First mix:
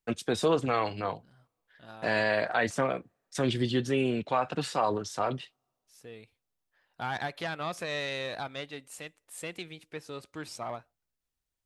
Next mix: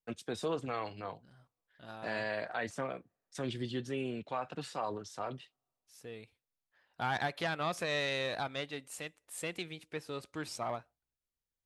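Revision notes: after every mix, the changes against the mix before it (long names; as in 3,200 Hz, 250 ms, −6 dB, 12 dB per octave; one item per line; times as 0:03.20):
first voice −9.5 dB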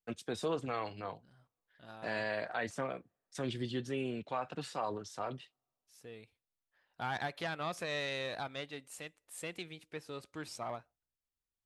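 second voice −3.5 dB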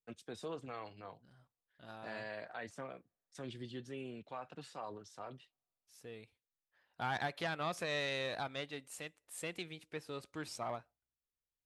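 first voice −8.5 dB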